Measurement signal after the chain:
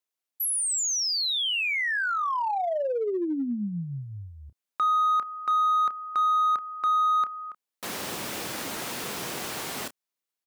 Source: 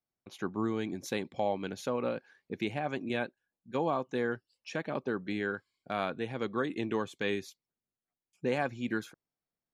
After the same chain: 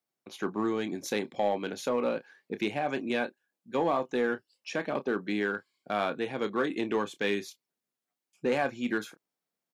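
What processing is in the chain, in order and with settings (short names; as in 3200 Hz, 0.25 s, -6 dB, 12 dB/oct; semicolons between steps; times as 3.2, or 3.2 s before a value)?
HPF 200 Hz 12 dB/oct; doubler 29 ms -12 dB; in parallel at -4 dB: overloaded stage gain 28.5 dB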